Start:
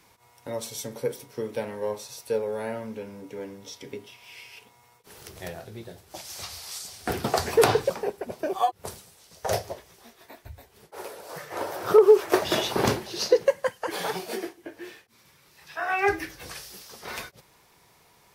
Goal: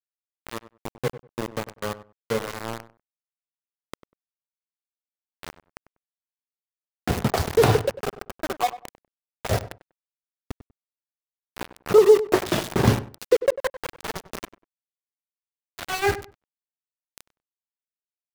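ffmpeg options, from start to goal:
-filter_complex "[0:a]bass=f=250:g=12,treble=f=4k:g=-6,aeval=exprs='val(0)*gte(abs(val(0)),0.075)':c=same,asplit=2[a][b];[b]adelay=97,lowpass=f=1.5k:p=1,volume=-14dB,asplit=2[c][d];[d]adelay=97,lowpass=f=1.5k:p=1,volume=0.2[e];[a][c][e]amix=inputs=3:normalize=0"

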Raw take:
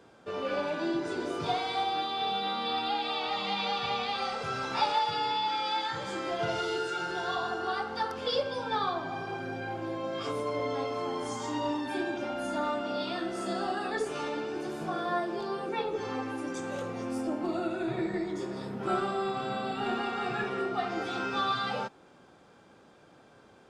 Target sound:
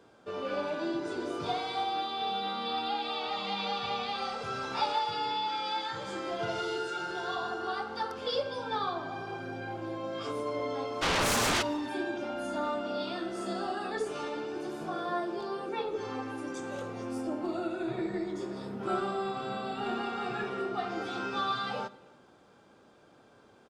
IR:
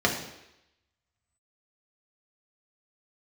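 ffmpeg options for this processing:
-filter_complex "[0:a]asplit=3[a][b][c];[a]afade=t=out:st=11.01:d=0.02[d];[b]aeval=exprs='0.0841*sin(PI/2*6.31*val(0)/0.0841)':c=same,afade=t=in:st=11.01:d=0.02,afade=t=out:st=11.61:d=0.02[e];[c]afade=t=in:st=11.61:d=0.02[f];[d][e][f]amix=inputs=3:normalize=0,asplit=2[g][h];[h]adelay=274.1,volume=-25dB,highshelf=f=4k:g=-6.17[i];[g][i]amix=inputs=2:normalize=0,asplit=2[j][k];[1:a]atrim=start_sample=2205,asetrate=37926,aresample=44100[l];[k][l]afir=irnorm=-1:irlink=0,volume=-29dB[m];[j][m]amix=inputs=2:normalize=0,volume=-3dB"

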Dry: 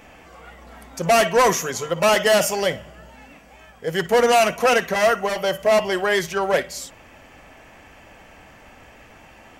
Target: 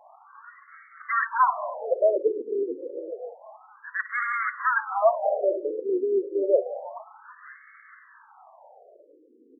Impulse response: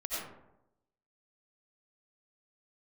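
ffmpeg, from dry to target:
-filter_complex "[0:a]asplit=5[a][b][c][d][e];[b]adelay=458,afreqshift=-75,volume=-13dB[f];[c]adelay=916,afreqshift=-150,volume=-20.3dB[g];[d]adelay=1374,afreqshift=-225,volume=-27.7dB[h];[e]adelay=1832,afreqshift=-300,volume=-35dB[i];[a][f][g][h][i]amix=inputs=5:normalize=0,asplit=2[j][k];[1:a]atrim=start_sample=2205,afade=t=out:st=0.35:d=0.01,atrim=end_sample=15876,adelay=109[l];[k][l]afir=irnorm=-1:irlink=0,volume=-18dB[m];[j][m]amix=inputs=2:normalize=0,afftfilt=real='re*between(b*sr/1024,350*pow(1600/350,0.5+0.5*sin(2*PI*0.29*pts/sr))/1.41,350*pow(1600/350,0.5+0.5*sin(2*PI*0.29*pts/sr))*1.41)':imag='im*between(b*sr/1024,350*pow(1600/350,0.5+0.5*sin(2*PI*0.29*pts/sr))/1.41,350*pow(1600/350,0.5+0.5*sin(2*PI*0.29*pts/sr))*1.41)':win_size=1024:overlap=0.75"

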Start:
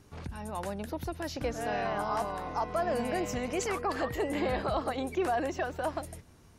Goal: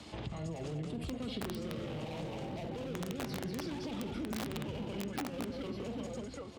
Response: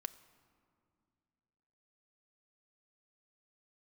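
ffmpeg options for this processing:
-filter_complex "[0:a]asplit=2[a][b];[b]aecho=0:1:55|200|771:0.282|0.422|0.178[c];[a][c]amix=inputs=2:normalize=0,asplit=2[d][e];[e]highpass=f=720:p=1,volume=20dB,asoftclip=type=tanh:threshold=-18dB[f];[d][f]amix=inputs=2:normalize=0,lowpass=f=1.3k:p=1,volume=-6dB,acrossover=split=390|2900[g][h][i];[h]volume=30dB,asoftclip=hard,volume=-30dB[j];[g][j][i]amix=inputs=3:normalize=0,acrossover=split=340[k][l];[l]acompressor=threshold=-47dB:ratio=4[m];[k][m]amix=inputs=2:normalize=0,highshelf=f=2.8k:t=q:w=1.5:g=8.5,asetrate=33038,aresample=44100,atempo=1.33484,aeval=exprs='(mod(23.7*val(0)+1,2)-1)/23.7':c=same,highpass=52,bandreject=f=90.84:t=h:w=4,bandreject=f=181.68:t=h:w=4,bandreject=f=272.52:t=h:w=4,bandreject=f=363.36:t=h:w=4,bandreject=f=454.2:t=h:w=4,bandreject=f=545.04:t=h:w=4,bandreject=f=635.88:t=h:w=4,bandreject=f=726.72:t=h:w=4,bandreject=f=817.56:t=h:w=4,bandreject=f=908.4:t=h:w=4,bandreject=f=999.24:t=h:w=4,bandreject=f=1.09008k:t=h:w=4,bandreject=f=1.18092k:t=h:w=4,bandreject=f=1.27176k:t=h:w=4,bandreject=f=1.3626k:t=h:w=4,bandreject=f=1.45344k:t=h:w=4,bandreject=f=1.54428k:t=h:w=4,bandreject=f=1.63512k:t=h:w=4,bandreject=f=1.72596k:t=h:w=4,bandreject=f=1.8168k:t=h:w=4,bandreject=f=1.90764k:t=h:w=4,bandreject=f=1.99848k:t=h:w=4,bandreject=f=2.08932k:t=h:w=4,bandreject=f=2.18016k:t=h:w=4,bandreject=f=2.271k:t=h:w=4,bandreject=f=2.36184k:t=h:w=4,bandreject=f=2.45268k:t=h:w=4,bandreject=f=2.54352k:t=h:w=4,bandreject=f=2.63436k:t=h:w=4,bandreject=f=2.7252k:t=h:w=4,bandreject=f=2.81604k:t=h:w=4,bandreject=f=2.90688k:t=h:w=4,acompressor=threshold=-37dB:ratio=6,volume=2dB"

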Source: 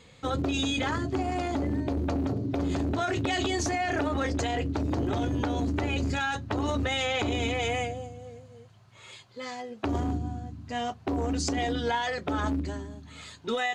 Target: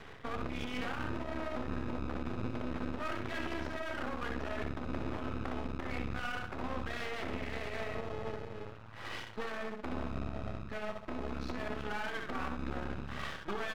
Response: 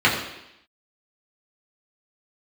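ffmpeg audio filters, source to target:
-filter_complex "[0:a]equalizer=f=1.5k:w=1.2:g=9,asplit=2[a][b];[b]adelay=33,volume=-13.5dB[c];[a][c]amix=inputs=2:normalize=0,areverse,acompressor=threshold=-34dB:ratio=6,areverse,aemphasis=mode=reproduction:type=bsi,asplit=2[d][e];[e]acrusher=samples=31:mix=1:aa=0.000001,volume=-6.5dB[f];[d][f]amix=inputs=2:normalize=0,highpass=f=460:p=1,aecho=1:1:64|128|192|256:0.596|0.185|0.0572|0.0177,asetrate=39289,aresample=44100,atempo=1.12246,lowpass=3.2k,alimiter=level_in=7.5dB:limit=-24dB:level=0:latency=1:release=380,volume=-7.5dB,aeval=exprs='max(val(0),0)':c=same,volume=7.5dB"

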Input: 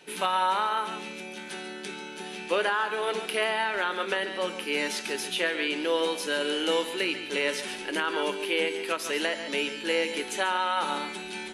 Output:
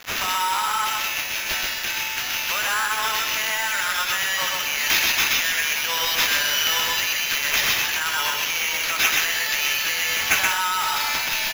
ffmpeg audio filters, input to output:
-filter_complex "[0:a]highpass=f=810:w=0.5412,highpass=f=810:w=1.3066,tiltshelf=f=1.2k:g=-3.5,alimiter=limit=-23.5dB:level=0:latency=1:release=56,acontrast=33,asoftclip=type=tanh:threshold=-23.5dB,acrusher=bits=6:mix=0:aa=0.000001,lowpass=f=6.8k:t=q:w=6.3,acrusher=samples=5:mix=1:aa=0.000001,asplit=2[a][b];[b]aecho=0:1:126:0.708[c];[a][c]amix=inputs=2:normalize=0,volume=4dB"

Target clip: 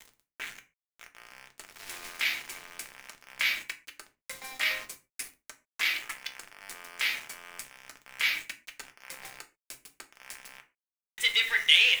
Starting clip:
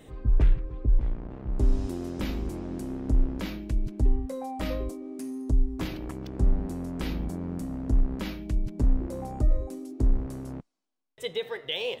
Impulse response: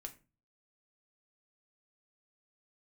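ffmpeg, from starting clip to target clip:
-filter_complex "[0:a]asplit=2[a][b];[b]alimiter=limit=-22dB:level=0:latency=1:release=43,volume=0dB[c];[a][c]amix=inputs=2:normalize=0,aeval=exprs='0.316*(cos(1*acos(clip(val(0)/0.316,-1,1)))-cos(1*PI/2))+0.02*(cos(3*acos(clip(val(0)/0.316,-1,1)))-cos(3*PI/2))+0.00178*(cos(4*acos(clip(val(0)/0.316,-1,1)))-cos(4*PI/2))+0.0631*(cos(5*acos(clip(val(0)/0.316,-1,1)))-cos(5*PI/2))':c=same,highpass=f=2.1k:t=q:w=2.7,aeval=exprs='val(0)*gte(abs(val(0)),0.0119)':c=same[d];[1:a]atrim=start_sample=2205,atrim=end_sample=6615[e];[d][e]afir=irnorm=-1:irlink=0,volume=5dB"

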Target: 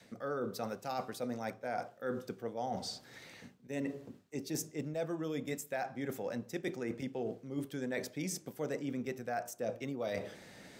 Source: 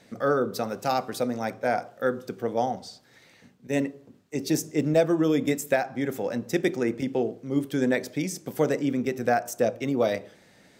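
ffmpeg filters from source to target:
-af "adynamicequalizer=threshold=0.0126:dfrequency=310:dqfactor=1.7:tfrequency=310:tqfactor=1.7:attack=5:release=100:ratio=0.375:range=2.5:mode=cutabove:tftype=bell,areverse,acompressor=threshold=-39dB:ratio=5,areverse,volume=2.5dB"

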